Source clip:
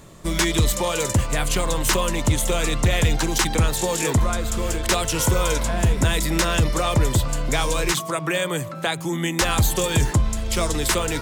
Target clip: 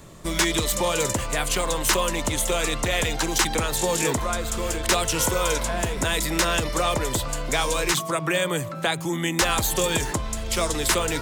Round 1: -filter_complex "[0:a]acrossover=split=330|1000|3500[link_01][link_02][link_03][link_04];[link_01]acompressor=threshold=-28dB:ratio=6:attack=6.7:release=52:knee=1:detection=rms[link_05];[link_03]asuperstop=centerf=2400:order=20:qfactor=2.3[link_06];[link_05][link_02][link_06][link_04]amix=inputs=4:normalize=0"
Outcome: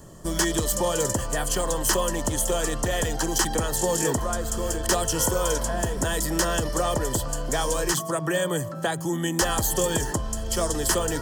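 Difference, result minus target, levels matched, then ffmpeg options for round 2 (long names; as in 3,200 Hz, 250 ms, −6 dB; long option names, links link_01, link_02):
2,000 Hz band −3.5 dB
-filter_complex "[0:a]acrossover=split=330|1000|3500[link_01][link_02][link_03][link_04];[link_01]acompressor=threshold=-28dB:ratio=6:attack=6.7:release=52:knee=1:detection=rms[link_05];[link_05][link_02][link_03][link_04]amix=inputs=4:normalize=0"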